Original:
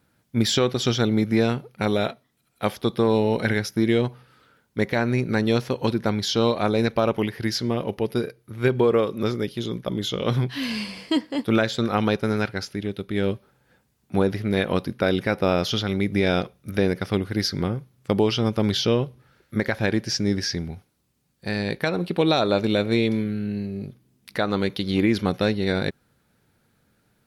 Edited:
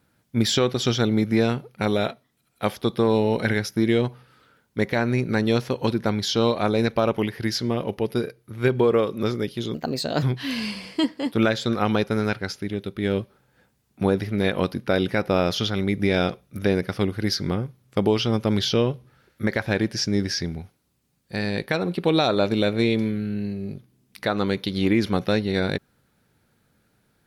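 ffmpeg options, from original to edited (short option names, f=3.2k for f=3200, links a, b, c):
-filter_complex "[0:a]asplit=3[a][b][c];[a]atrim=end=9.744[d];[b]atrim=start=9.74:end=10.35,asetpts=PTS-STARTPTS,asetrate=55566,aresample=44100[e];[c]atrim=start=10.346[f];[d][e]acrossfade=d=0.004:c1=hsin:c2=hsin[g];[g][f]acrossfade=d=0.004:c1=hsin:c2=hsin"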